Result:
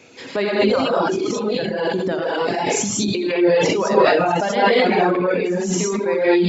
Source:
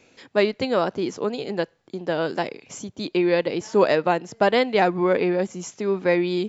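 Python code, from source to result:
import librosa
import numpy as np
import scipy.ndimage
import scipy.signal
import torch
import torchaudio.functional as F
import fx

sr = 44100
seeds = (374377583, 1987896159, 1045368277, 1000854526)

p1 = scipy.signal.sosfilt(scipy.signal.butter(2, 100.0, 'highpass', fs=sr, output='sos'), x)
p2 = p1 + fx.echo_thinned(p1, sr, ms=64, feedback_pct=62, hz=170.0, wet_db=-12.5, dry=0)
p3 = fx.rev_gated(p2, sr, seeds[0], gate_ms=250, shape='rising', drr_db=-8.0)
p4 = fx.over_compress(p3, sr, threshold_db=-24.0, ratio=-0.5)
p5 = p3 + F.gain(torch.from_numpy(p4), 0.5).numpy()
p6 = fx.dereverb_blind(p5, sr, rt60_s=1.8)
p7 = fx.sustainer(p6, sr, db_per_s=24.0)
y = F.gain(torch.from_numpy(p7), -5.0).numpy()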